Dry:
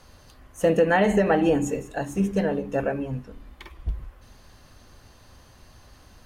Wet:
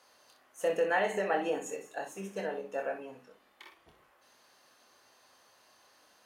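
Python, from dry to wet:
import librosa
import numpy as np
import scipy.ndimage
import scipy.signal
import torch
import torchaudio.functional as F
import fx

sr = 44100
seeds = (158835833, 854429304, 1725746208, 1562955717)

p1 = scipy.signal.sosfilt(scipy.signal.butter(2, 480.0, 'highpass', fs=sr, output='sos'), x)
p2 = p1 + fx.room_early_taps(p1, sr, ms=(26, 62), db=(-6.0, -9.0), dry=0)
y = p2 * librosa.db_to_amplitude(-8.0)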